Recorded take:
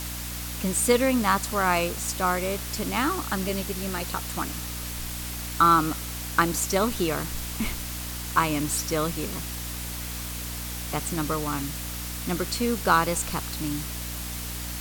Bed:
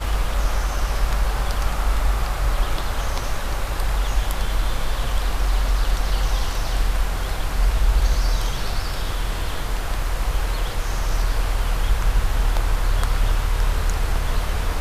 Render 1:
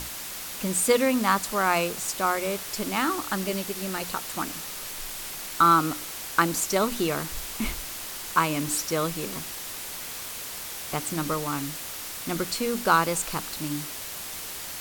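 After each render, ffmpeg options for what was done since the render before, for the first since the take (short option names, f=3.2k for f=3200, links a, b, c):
-af "bandreject=f=60:t=h:w=6,bandreject=f=120:t=h:w=6,bandreject=f=180:t=h:w=6,bandreject=f=240:t=h:w=6,bandreject=f=300:t=h:w=6"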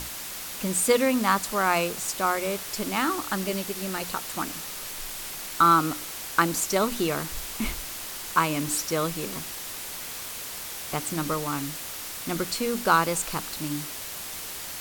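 -af anull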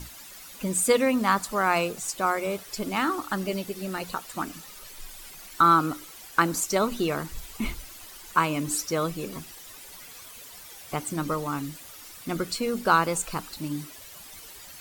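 -af "afftdn=nr=12:nf=-37"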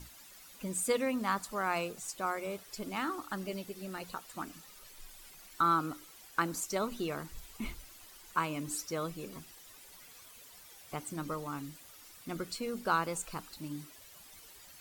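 -af "volume=-9.5dB"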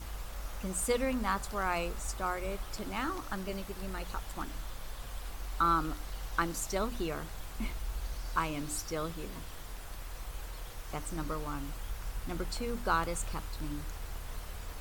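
-filter_complex "[1:a]volume=-20dB[a];[0:a][a]amix=inputs=2:normalize=0"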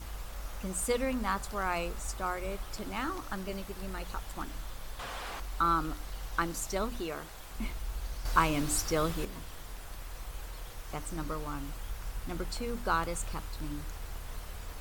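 -filter_complex "[0:a]asettb=1/sr,asplit=3[a][b][c];[a]atrim=end=4.994[d];[b]atrim=start=4.99:end=5.4,asetpts=PTS-STARTPTS,afade=t=in:d=0.004:c=qsin,afade=t=out:st=0.406:d=0.004:c=qsin,asplit=2[e][f];[f]highpass=f=720:p=1,volume=24dB,asoftclip=type=tanh:threshold=-28dB[g];[e][g]amix=inputs=2:normalize=0,lowpass=f=2.1k:p=1,volume=-6dB[h];[c]atrim=start=5.396[i];[d][h]acrossfade=d=0.004:c1=hsin:c2=qsin[j];[j][i]acrossfade=d=0.004:c1=qsin:c2=hsin,asettb=1/sr,asplit=3[k][l][m];[k]atrim=end=7.004[n];[l]atrim=start=7:end=7.51,asetpts=PTS-STARTPTS,afade=t=in:d=0.004:c=qsin,afade=t=out:st=0.506:d=0.004:c=qsin,bass=f=250:g=-7,treble=f=4k:g=0[o];[m]atrim=start=7.506[p];[n][o]acrossfade=d=0.004:c1=hsin:c2=qsin[q];[q][p]acrossfade=d=0.004:c1=qsin:c2=hsin,asettb=1/sr,asplit=3[r][s][t];[r]atrim=end=8.254[u];[s]atrim=start=8.25:end=9.25,asetpts=PTS-STARTPTS,afade=t=in:d=0.004:c=qsin,afade=t=out:st=0.996:d=0.004:c=qsin,acontrast=60[v];[t]atrim=start=9.246[w];[u][v]acrossfade=d=0.004:c1=hsin:c2=qsin[x];[x][w]acrossfade=d=0.004:c1=qsin:c2=hsin"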